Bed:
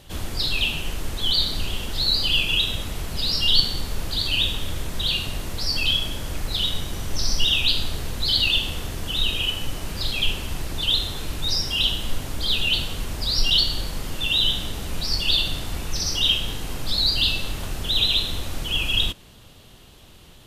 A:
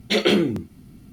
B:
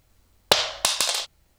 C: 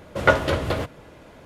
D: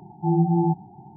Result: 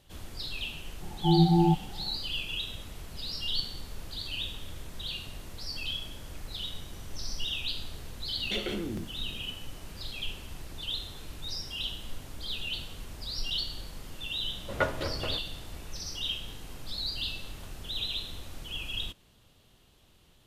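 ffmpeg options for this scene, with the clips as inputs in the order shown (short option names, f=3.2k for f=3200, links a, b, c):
-filter_complex "[0:a]volume=-13.5dB[a];[1:a]acompressor=threshold=-27dB:ratio=6:attack=3.2:release=140:knee=1:detection=peak[b];[4:a]atrim=end=1.16,asetpts=PTS-STARTPTS,volume=-1.5dB,afade=t=in:d=0.004:c=hsin,afade=t=out:st=1.156:d=0.004:c=hsin,adelay=1010[c];[b]atrim=end=1.12,asetpts=PTS-STARTPTS,volume=-4dB,afade=t=in:d=0.004:c=hsin,afade=t=out:st=1.116:d=0.004:c=hsin,adelay=8410[d];[3:a]atrim=end=1.45,asetpts=PTS-STARTPTS,volume=-11.5dB,afade=t=in:d=0.004:c=hsin,afade=t=out:st=1.446:d=0.004:c=hsin,adelay=14530[e];[a][c][d][e]amix=inputs=4:normalize=0"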